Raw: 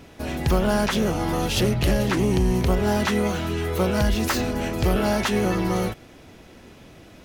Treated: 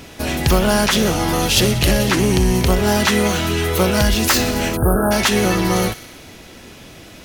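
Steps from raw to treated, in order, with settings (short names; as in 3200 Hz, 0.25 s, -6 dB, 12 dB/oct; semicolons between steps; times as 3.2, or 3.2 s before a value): high shelf 2200 Hz +8 dB; thin delay 61 ms, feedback 74%, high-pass 1400 Hz, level -14 dB; in parallel at -2.5 dB: vocal rider within 4 dB 0.5 s; on the sum: spectral delete 4.77–5.12, 1700–8600 Hz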